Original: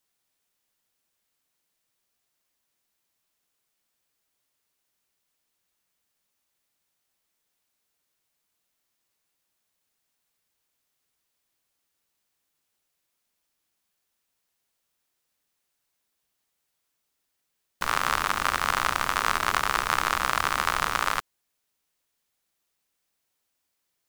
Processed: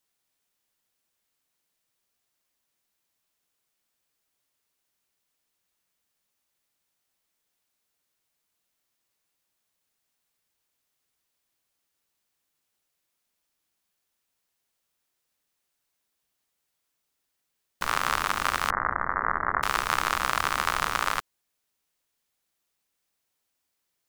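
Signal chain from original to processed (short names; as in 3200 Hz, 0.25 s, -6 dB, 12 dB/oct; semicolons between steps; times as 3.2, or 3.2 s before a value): 18.7–19.63 steep low-pass 2000 Hz 96 dB/oct; gain -1 dB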